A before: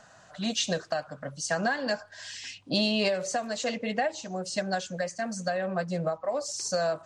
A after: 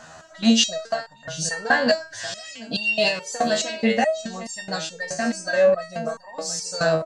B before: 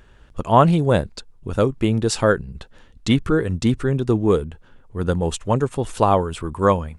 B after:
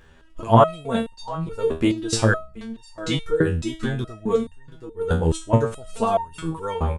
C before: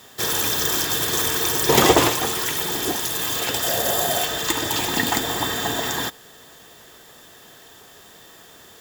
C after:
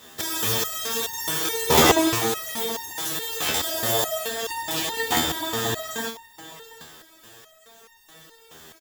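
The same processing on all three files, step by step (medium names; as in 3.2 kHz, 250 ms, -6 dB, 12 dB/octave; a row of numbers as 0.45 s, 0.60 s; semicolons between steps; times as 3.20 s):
delay 729 ms -15.5 dB; resonator arpeggio 4.7 Hz 80–910 Hz; normalise loudness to -23 LUFS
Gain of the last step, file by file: +19.5 dB, +10.0 dB, +9.0 dB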